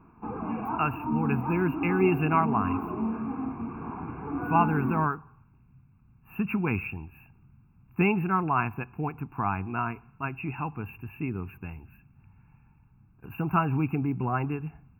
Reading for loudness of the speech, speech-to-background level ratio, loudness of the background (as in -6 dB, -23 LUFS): -29.0 LUFS, 3.5 dB, -32.5 LUFS